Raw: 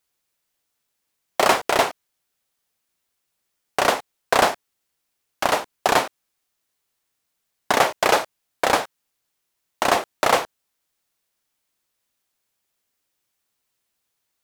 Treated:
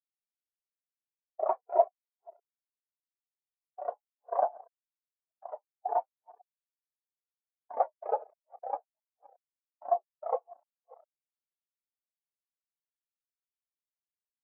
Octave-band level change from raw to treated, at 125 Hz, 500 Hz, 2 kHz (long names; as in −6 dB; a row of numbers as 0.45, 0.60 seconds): below −40 dB, −9.5 dB, −37.0 dB